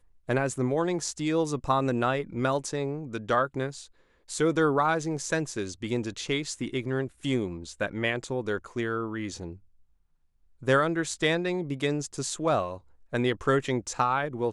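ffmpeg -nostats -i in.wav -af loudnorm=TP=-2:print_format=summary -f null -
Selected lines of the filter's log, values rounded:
Input Integrated:    -28.5 LUFS
Input True Peak:     -10.3 dBTP
Input LRA:             2.9 LU
Input Threshold:     -38.8 LUFS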